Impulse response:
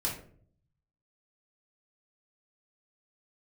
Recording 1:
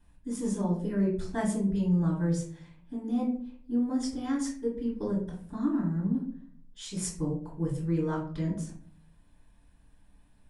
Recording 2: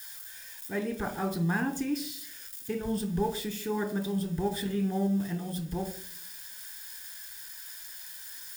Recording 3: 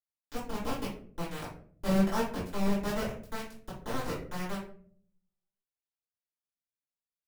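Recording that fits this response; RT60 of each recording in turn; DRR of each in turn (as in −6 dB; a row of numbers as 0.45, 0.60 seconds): 1; 0.50, 0.50, 0.50 seconds; −4.5, 4.5, −12.5 decibels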